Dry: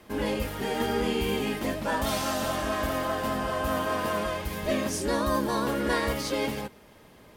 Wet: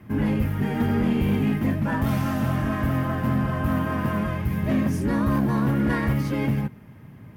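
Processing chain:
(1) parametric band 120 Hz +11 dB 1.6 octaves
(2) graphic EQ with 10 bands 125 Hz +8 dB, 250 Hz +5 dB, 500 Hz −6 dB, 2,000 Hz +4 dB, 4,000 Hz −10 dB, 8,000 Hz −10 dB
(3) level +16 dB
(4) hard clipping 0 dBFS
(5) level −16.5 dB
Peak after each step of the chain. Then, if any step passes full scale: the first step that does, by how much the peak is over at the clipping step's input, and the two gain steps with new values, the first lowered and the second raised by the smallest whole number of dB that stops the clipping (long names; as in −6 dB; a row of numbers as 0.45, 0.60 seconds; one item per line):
−11.0, −8.5, +7.5, 0.0, −16.5 dBFS
step 3, 7.5 dB
step 3 +8 dB, step 5 −8.5 dB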